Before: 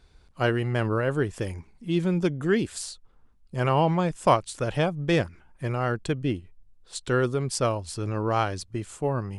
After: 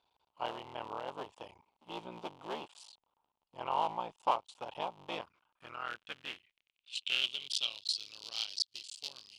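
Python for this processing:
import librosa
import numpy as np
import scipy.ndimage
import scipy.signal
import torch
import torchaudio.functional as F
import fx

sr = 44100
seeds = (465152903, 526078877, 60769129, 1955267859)

y = fx.cycle_switch(x, sr, every=3, mode='muted')
y = fx.high_shelf_res(y, sr, hz=2300.0, db=9.0, q=3.0)
y = fx.filter_sweep_bandpass(y, sr, from_hz=920.0, to_hz=4600.0, start_s=5.02, end_s=8.1, q=4.3)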